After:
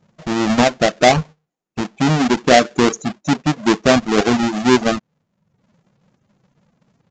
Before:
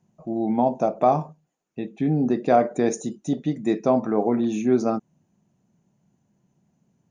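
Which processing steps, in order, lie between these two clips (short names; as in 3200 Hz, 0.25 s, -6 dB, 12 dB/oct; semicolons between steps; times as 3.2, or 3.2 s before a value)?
half-waves squared off; downsampling 16000 Hz; reverb removal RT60 0.71 s; gain +4 dB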